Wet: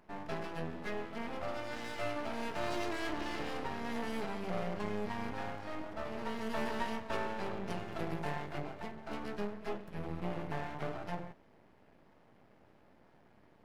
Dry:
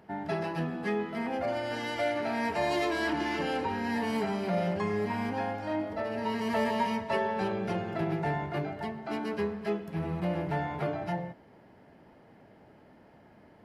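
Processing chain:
0:07.70–0:08.54: high-shelf EQ 4,600 Hz +10 dB
half-wave rectification
level −3.5 dB

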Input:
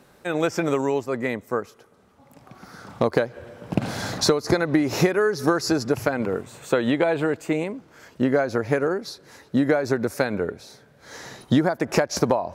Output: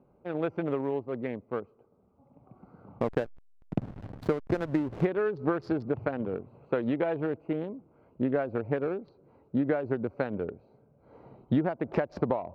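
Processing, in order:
adaptive Wiener filter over 25 samples
high-frequency loss of the air 410 metres
0:03.00–0:05.05: slack as between gear wheels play −25 dBFS
level −6 dB

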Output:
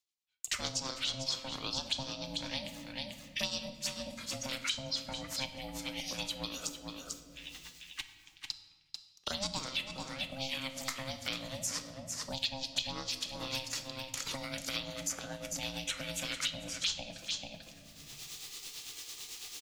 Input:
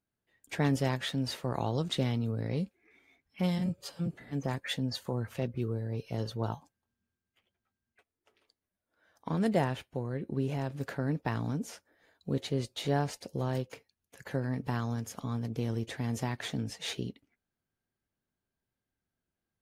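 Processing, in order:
flat-topped bell 4,500 Hz +10 dB
noise gate −56 dBFS, range −50 dB
phaser swept by the level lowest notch 180 Hz, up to 2,500 Hz, full sweep at −25 dBFS
reversed playback
upward compression, threshold −33 dBFS
reversed playback
amplitude tremolo 9 Hz, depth 56%
tilt shelving filter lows −8.5 dB, about 910 Hz
ring modulation 400 Hz
on a send: single-tap delay 442 ms −11 dB
on the sum: rectangular room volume 390 cubic metres, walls mixed, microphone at 0.46 metres
multiband upward and downward compressor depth 100%

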